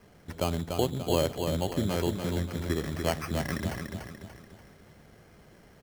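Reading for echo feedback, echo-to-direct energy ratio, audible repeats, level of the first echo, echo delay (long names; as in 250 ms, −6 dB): 44%, −4.5 dB, 5, −5.5 dB, 291 ms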